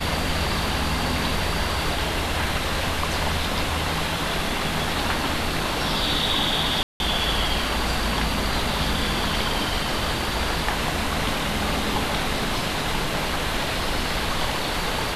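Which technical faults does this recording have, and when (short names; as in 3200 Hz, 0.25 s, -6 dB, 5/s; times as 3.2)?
6.83–7 gap 0.171 s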